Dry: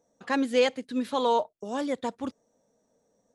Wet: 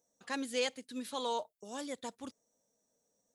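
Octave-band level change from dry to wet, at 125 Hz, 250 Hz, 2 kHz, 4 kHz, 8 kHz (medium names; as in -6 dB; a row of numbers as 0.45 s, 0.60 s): no reading, -12.5 dB, -8.0 dB, -5.0 dB, +0.5 dB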